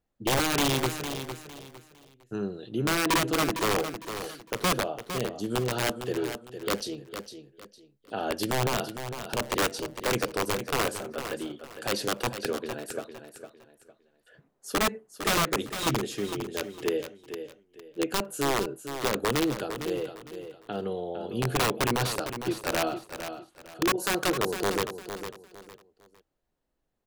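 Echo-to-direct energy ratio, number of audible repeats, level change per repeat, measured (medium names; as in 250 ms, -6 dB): -9.0 dB, 3, -11.0 dB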